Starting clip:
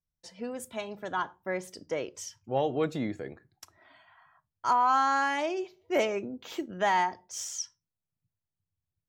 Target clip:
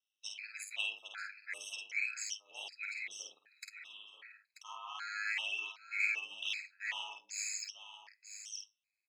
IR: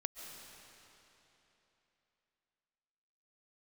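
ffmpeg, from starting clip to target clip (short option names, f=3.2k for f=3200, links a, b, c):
-filter_complex "[0:a]lowpass=7.3k,areverse,acompressor=threshold=-37dB:ratio=6,areverse,aeval=exprs='val(0)*sin(2*PI*52*n/s)':c=same,highpass=f=2.5k:t=q:w=6,asoftclip=type=tanh:threshold=-29dB,asplit=2[a][b];[b]adelay=50,volume=-4dB[c];[a][c]amix=inputs=2:normalize=0,aecho=1:1:936:0.316,afftfilt=real='re*gt(sin(2*PI*1.3*pts/sr)*(1-2*mod(floor(b*sr/1024/1300),2)),0)':imag='im*gt(sin(2*PI*1.3*pts/sr)*(1-2*mod(floor(b*sr/1024/1300),2)),0)':win_size=1024:overlap=0.75,volume=8dB"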